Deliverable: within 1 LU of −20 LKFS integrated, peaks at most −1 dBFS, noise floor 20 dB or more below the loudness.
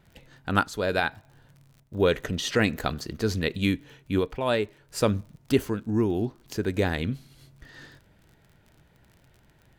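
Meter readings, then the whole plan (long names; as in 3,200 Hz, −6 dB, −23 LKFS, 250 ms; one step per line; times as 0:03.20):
crackle rate 38 per second; integrated loudness −27.5 LKFS; sample peak −7.5 dBFS; target loudness −20.0 LKFS
→ click removal
level +7.5 dB
brickwall limiter −1 dBFS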